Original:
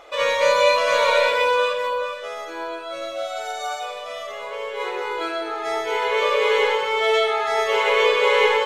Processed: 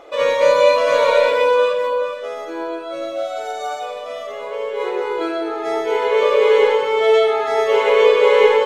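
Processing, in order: peaking EQ 290 Hz +12.5 dB 2.4 oct; trim -2.5 dB

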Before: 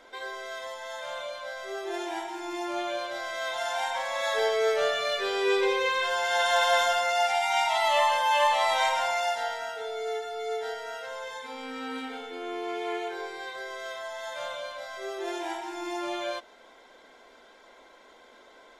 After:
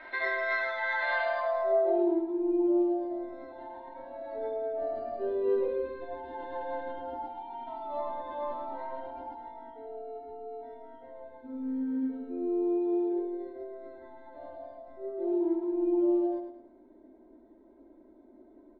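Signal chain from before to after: resonant high shelf 5.1 kHz -10 dB, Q 3; comb 3.2 ms, depth 75%; formant shift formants +2 st; low-pass sweep 1.8 kHz -> 310 Hz, 1.22–2.21 s; feedback delay 106 ms, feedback 39%, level -7.5 dB

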